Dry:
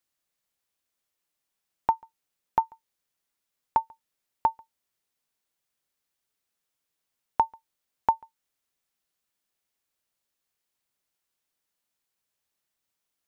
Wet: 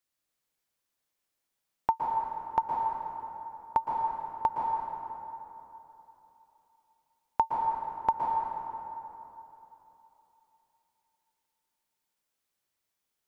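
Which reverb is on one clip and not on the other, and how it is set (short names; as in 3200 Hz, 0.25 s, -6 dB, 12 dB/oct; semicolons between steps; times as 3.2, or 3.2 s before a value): plate-style reverb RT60 3.3 s, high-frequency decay 0.55×, pre-delay 0.105 s, DRR -0.5 dB; gain -3 dB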